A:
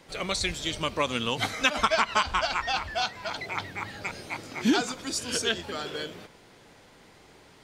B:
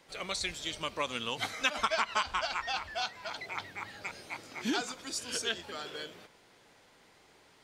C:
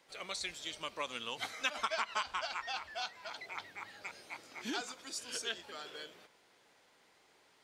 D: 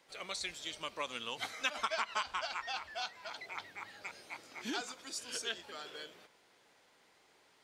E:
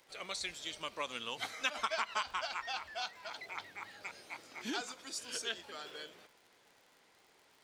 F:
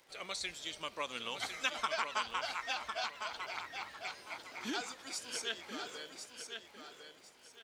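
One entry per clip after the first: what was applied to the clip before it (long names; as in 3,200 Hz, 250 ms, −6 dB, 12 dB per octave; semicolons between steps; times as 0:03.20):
low-shelf EQ 350 Hz −7.5 dB; level −5.5 dB
low-shelf EQ 190 Hz −11 dB; level −5 dB
no processing that can be heard
surface crackle 84 per second −51 dBFS
repeating echo 1,053 ms, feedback 26%, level −7 dB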